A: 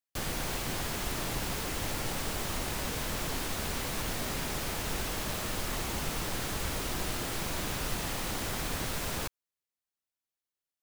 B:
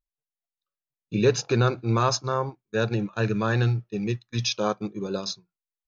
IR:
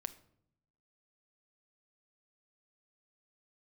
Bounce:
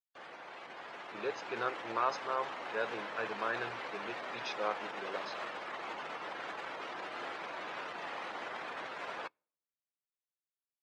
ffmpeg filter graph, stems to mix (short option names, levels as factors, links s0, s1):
-filter_complex "[0:a]alimiter=level_in=2.24:limit=0.0631:level=0:latency=1:release=47,volume=0.447,volume=0.708,asplit=2[s0][s1];[s1]volume=0.398[s2];[1:a]volume=0.211[s3];[2:a]atrim=start_sample=2205[s4];[s2][s4]afir=irnorm=-1:irlink=0[s5];[s0][s3][s5]amix=inputs=3:normalize=0,afftdn=nr=15:nf=-48,dynaudnorm=f=540:g=5:m=2.37,highpass=620,lowpass=2400"